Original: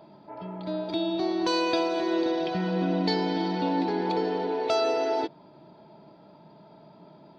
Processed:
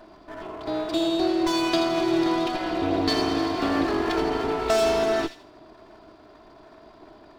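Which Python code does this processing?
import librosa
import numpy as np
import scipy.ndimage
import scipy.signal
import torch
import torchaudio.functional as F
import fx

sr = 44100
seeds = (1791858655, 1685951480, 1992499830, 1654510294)

y = fx.lower_of_two(x, sr, delay_ms=2.9)
y = fx.echo_wet_highpass(y, sr, ms=82, feedback_pct=31, hz=2700.0, wet_db=-7)
y = F.gain(torch.from_numpy(y), 4.5).numpy()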